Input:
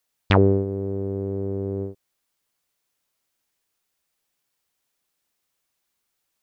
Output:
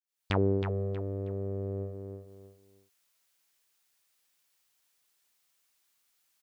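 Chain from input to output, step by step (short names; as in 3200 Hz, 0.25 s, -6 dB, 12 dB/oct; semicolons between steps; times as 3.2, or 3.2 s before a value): opening faded in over 0.60 s; feedback echo 0.318 s, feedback 27%, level -7 dB; mismatched tape noise reduction encoder only; gain -7 dB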